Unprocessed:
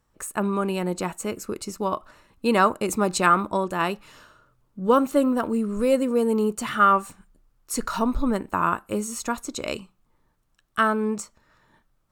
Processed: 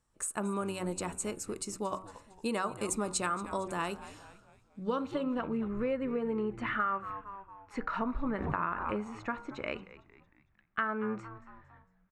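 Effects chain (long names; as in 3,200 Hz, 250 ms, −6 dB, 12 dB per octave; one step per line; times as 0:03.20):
low-pass filter sweep 9,000 Hz → 2,000 Hz, 0:04.31–0:05.63
echo with shifted repeats 228 ms, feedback 48%, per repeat −100 Hz, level −18 dB
downward compressor 6 to 1, threshold −21 dBFS, peak gain reduction 11.5 dB
hum removal 94.26 Hz, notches 17
0:08.24–0:09.24: background raised ahead of every attack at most 35 dB per second
level −7.5 dB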